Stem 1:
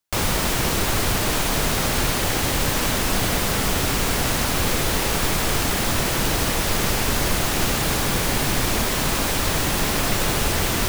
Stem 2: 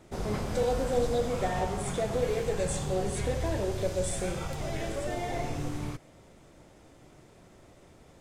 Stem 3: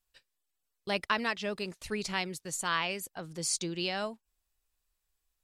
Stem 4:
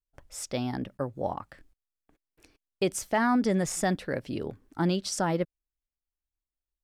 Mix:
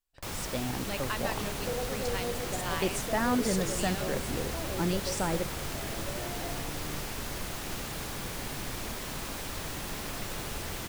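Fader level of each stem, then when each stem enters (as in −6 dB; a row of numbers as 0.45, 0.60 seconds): −15.5, −7.5, −6.0, −4.0 decibels; 0.10, 1.10, 0.00, 0.00 seconds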